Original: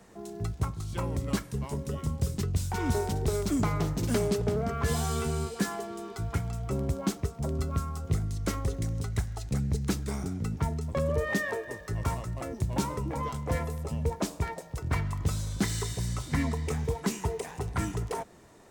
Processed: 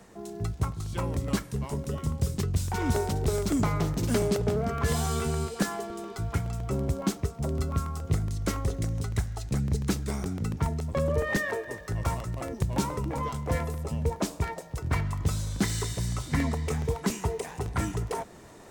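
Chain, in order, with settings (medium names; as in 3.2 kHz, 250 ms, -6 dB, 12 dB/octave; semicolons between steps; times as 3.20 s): reverse; upward compressor, threshold -44 dBFS; reverse; crackling interface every 0.14 s, samples 64, repeat, from 0.72 s; trim +1.5 dB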